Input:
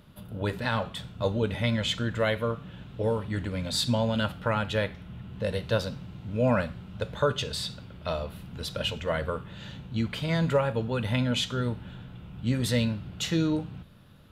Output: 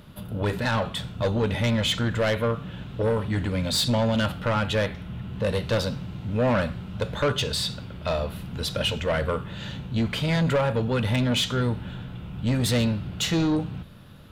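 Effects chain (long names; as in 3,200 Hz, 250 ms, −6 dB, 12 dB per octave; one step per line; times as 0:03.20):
soft clipping −25 dBFS, distortion −11 dB
level +7 dB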